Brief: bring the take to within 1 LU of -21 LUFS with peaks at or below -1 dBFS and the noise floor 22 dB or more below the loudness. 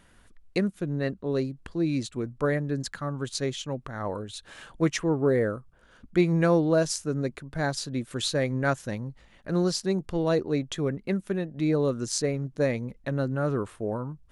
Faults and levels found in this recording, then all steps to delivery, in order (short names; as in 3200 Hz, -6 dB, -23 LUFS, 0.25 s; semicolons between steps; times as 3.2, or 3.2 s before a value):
loudness -28.0 LUFS; peak -10.5 dBFS; loudness target -21.0 LUFS
-> gain +7 dB